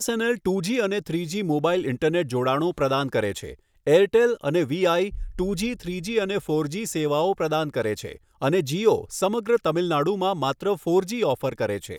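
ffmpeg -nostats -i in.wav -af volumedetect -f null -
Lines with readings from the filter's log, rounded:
mean_volume: -23.6 dB
max_volume: -7.0 dB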